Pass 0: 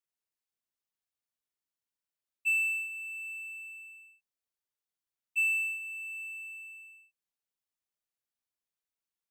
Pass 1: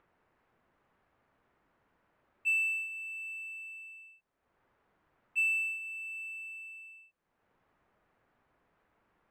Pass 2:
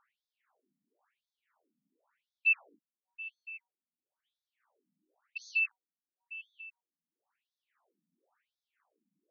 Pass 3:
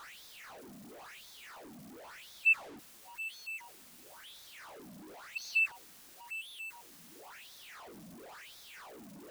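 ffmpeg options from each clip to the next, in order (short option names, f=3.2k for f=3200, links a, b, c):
-filter_complex "[0:a]highshelf=f=6.6k:g=-10,acrossover=split=1900[a][b];[a]acompressor=mode=upward:threshold=-50dB:ratio=2.5[c];[c][b]amix=inputs=2:normalize=0"
-filter_complex "[0:a]flanger=delay=7.7:depth=5.4:regen=89:speed=0.9:shape=sinusoidal,asplit=2[a][b];[b]acrusher=bits=5:mix=0:aa=0.000001,volume=-4dB[c];[a][c]amix=inputs=2:normalize=0,afftfilt=real='re*between(b*sr/1024,200*pow(4800/200,0.5+0.5*sin(2*PI*0.96*pts/sr))/1.41,200*pow(4800/200,0.5+0.5*sin(2*PI*0.96*pts/sr))*1.41)':imag='im*between(b*sr/1024,200*pow(4800/200,0.5+0.5*sin(2*PI*0.96*pts/sr))/1.41,200*pow(4800/200,0.5+0.5*sin(2*PI*0.96*pts/sr))*1.41)':win_size=1024:overlap=0.75,volume=5dB"
-af "aeval=exprs='val(0)+0.5*0.00596*sgn(val(0))':c=same"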